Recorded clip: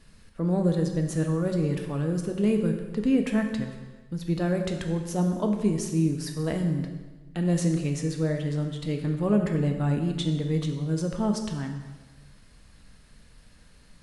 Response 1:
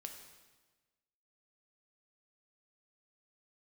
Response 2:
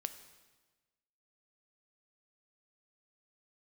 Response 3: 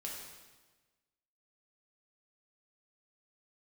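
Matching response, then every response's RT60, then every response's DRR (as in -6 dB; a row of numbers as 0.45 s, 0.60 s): 1; 1.3 s, 1.3 s, 1.3 s; 3.5 dB, 9.5 dB, -3.0 dB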